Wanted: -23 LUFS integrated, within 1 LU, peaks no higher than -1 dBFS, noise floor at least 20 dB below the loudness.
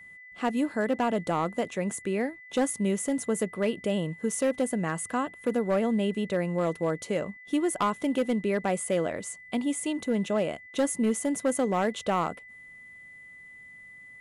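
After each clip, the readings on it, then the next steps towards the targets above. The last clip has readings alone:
clipped 0.8%; flat tops at -19.0 dBFS; steady tone 2000 Hz; tone level -46 dBFS; loudness -28.5 LUFS; peak -19.0 dBFS; loudness target -23.0 LUFS
-> clip repair -19 dBFS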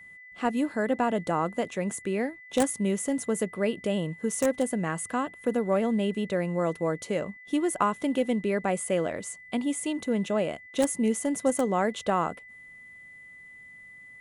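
clipped 0.0%; steady tone 2000 Hz; tone level -46 dBFS
-> notch 2000 Hz, Q 30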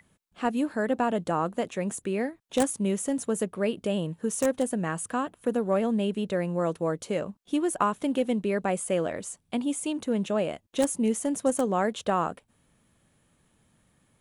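steady tone none; loudness -28.5 LUFS; peak -10.0 dBFS; loudness target -23.0 LUFS
-> gain +5.5 dB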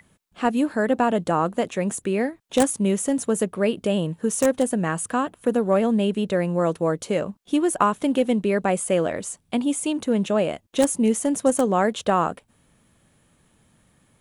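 loudness -23.0 LUFS; peak -4.5 dBFS; noise floor -63 dBFS

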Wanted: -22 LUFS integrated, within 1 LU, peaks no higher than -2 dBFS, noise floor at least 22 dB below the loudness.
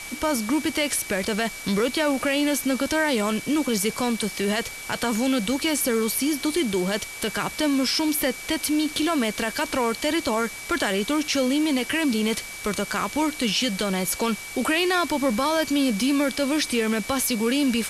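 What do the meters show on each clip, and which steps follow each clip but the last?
steady tone 2300 Hz; tone level -37 dBFS; noise floor -37 dBFS; noise floor target -46 dBFS; loudness -23.5 LUFS; peak -11.5 dBFS; loudness target -22.0 LUFS
-> notch 2300 Hz, Q 30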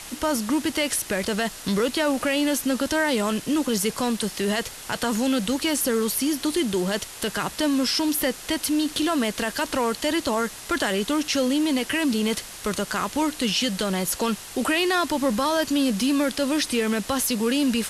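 steady tone none; noise floor -40 dBFS; noise floor target -46 dBFS
-> denoiser 6 dB, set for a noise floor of -40 dBFS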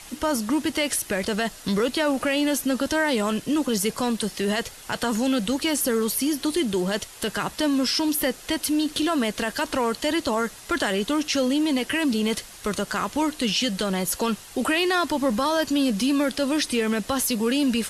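noise floor -44 dBFS; noise floor target -46 dBFS
-> denoiser 6 dB, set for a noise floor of -44 dBFS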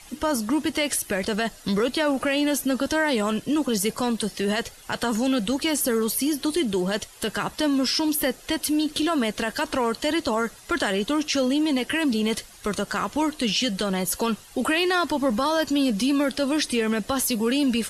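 noise floor -47 dBFS; loudness -24.0 LUFS; peak -12.5 dBFS; loudness target -22.0 LUFS
-> gain +2 dB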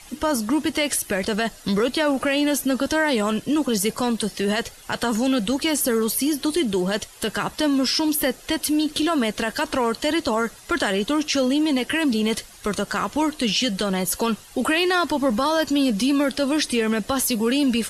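loudness -22.0 LUFS; peak -10.5 dBFS; noise floor -45 dBFS

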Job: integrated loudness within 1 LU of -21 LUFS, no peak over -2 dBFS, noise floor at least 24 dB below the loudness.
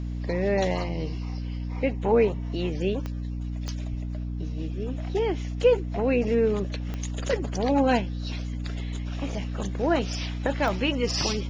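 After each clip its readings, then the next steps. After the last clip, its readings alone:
clicks 4; hum 60 Hz; harmonics up to 300 Hz; hum level -29 dBFS; loudness -27.5 LUFS; peak -9.5 dBFS; loudness target -21.0 LUFS
-> de-click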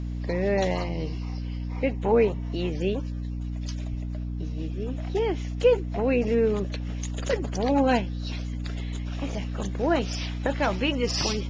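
clicks 0; hum 60 Hz; harmonics up to 300 Hz; hum level -29 dBFS
-> notches 60/120/180/240/300 Hz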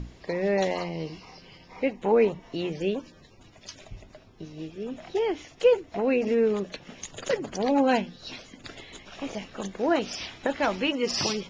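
hum none; loudness -27.5 LUFS; peak -10.5 dBFS; loudness target -21.0 LUFS
-> gain +6.5 dB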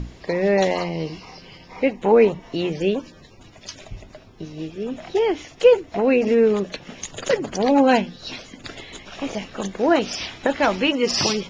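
loudness -21.0 LUFS; peak -4.0 dBFS; noise floor -47 dBFS

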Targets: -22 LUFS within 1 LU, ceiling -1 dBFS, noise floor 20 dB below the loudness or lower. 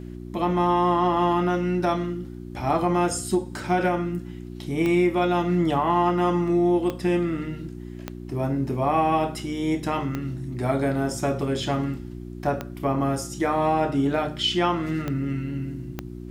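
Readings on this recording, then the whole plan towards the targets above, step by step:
clicks 7; hum 60 Hz; harmonics up to 360 Hz; hum level -34 dBFS; loudness -24.5 LUFS; peak -10.5 dBFS; loudness target -22.0 LUFS
-> de-click; de-hum 60 Hz, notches 6; gain +2.5 dB

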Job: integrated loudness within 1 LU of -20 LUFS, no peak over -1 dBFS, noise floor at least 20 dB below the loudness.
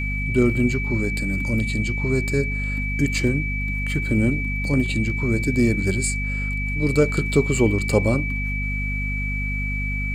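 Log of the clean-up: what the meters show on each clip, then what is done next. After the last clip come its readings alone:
hum 50 Hz; harmonics up to 250 Hz; hum level -24 dBFS; steady tone 2300 Hz; tone level -27 dBFS; loudness -22.0 LUFS; peak -4.5 dBFS; loudness target -20.0 LUFS
-> notches 50/100/150/200/250 Hz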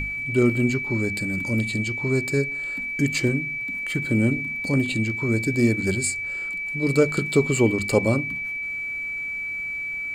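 hum none; steady tone 2300 Hz; tone level -27 dBFS
-> notch 2300 Hz, Q 30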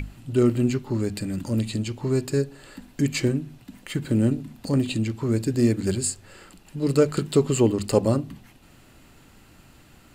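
steady tone none; loudness -24.5 LUFS; peak -6.0 dBFS; loudness target -20.0 LUFS
-> gain +4.5 dB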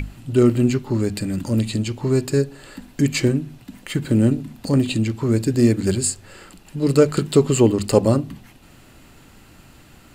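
loudness -20.0 LUFS; peak -1.5 dBFS; noise floor -48 dBFS

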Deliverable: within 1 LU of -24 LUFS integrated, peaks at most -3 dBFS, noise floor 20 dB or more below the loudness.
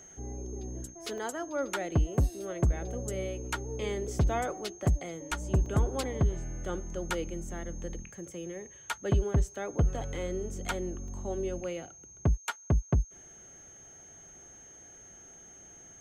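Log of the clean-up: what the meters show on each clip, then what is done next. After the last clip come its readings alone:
dropouts 3; longest dropout 2.2 ms; steady tone 6400 Hz; tone level -50 dBFS; loudness -33.0 LUFS; peak -16.5 dBFS; loudness target -24.0 LUFS
-> interpolate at 1.18/5.66/11.08, 2.2 ms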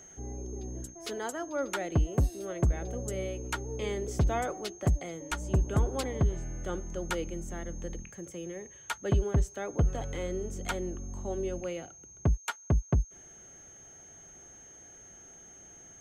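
dropouts 0; steady tone 6400 Hz; tone level -50 dBFS
-> notch 6400 Hz, Q 30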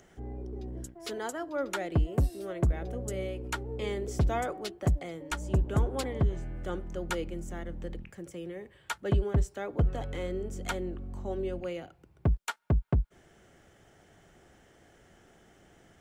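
steady tone none; loudness -33.0 LUFS; peak -16.5 dBFS; loudness target -24.0 LUFS
-> gain +9 dB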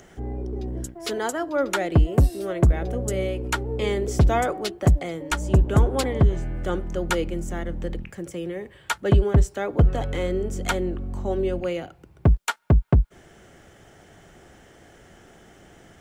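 loudness -24.0 LUFS; peak -7.5 dBFS; noise floor -52 dBFS

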